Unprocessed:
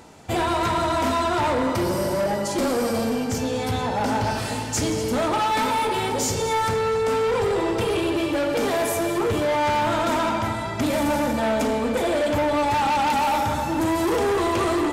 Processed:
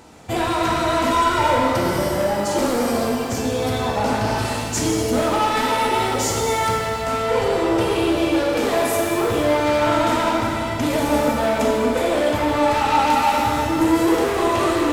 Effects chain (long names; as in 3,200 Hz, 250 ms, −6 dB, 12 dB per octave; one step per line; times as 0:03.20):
0:01.11–0:01.55: comb filter 2.1 ms, depth 75%
reverb with rising layers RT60 1.4 s, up +7 semitones, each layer −8 dB, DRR 1 dB